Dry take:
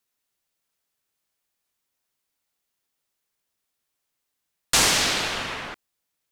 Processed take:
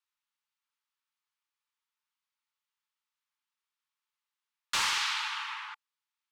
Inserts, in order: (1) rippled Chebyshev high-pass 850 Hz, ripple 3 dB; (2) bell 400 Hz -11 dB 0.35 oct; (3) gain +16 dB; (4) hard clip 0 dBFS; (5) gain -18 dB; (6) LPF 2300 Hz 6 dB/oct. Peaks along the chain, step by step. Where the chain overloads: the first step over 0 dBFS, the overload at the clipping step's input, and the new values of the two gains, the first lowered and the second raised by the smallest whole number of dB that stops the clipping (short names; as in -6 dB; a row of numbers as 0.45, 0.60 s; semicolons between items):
-8.5, -8.5, +7.5, 0.0, -18.0, -19.0 dBFS; step 3, 7.5 dB; step 3 +8 dB, step 5 -10 dB